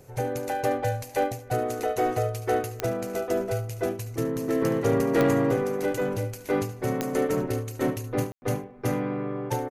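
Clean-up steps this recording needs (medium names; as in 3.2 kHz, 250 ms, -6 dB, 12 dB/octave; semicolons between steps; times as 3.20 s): clip repair -15 dBFS; de-click; room tone fill 8.32–8.42 s; inverse comb 72 ms -14.5 dB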